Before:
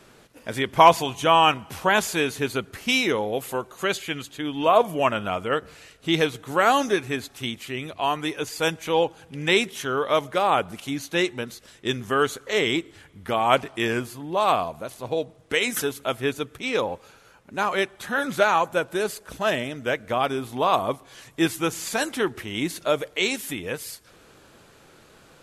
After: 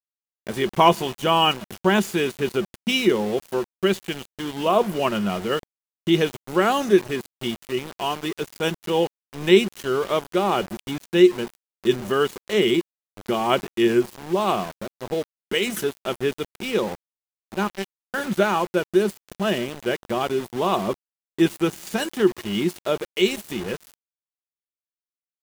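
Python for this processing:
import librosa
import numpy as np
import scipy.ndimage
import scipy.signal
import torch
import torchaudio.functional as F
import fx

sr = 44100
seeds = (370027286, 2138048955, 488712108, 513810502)

y = fx.power_curve(x, sr, exponent=3.0, at=(17.67, 18.14))
y = fx.small_body(y, sr, hz=(200.0, 360.0, 2900.0), ring_ms=90, db=16)
y = np.where(np.abs(y) >= 10.0 ** (-28.0 / 20.0), y, 0.0)
y = y * 10.0 ** (-3.0 / 20.0)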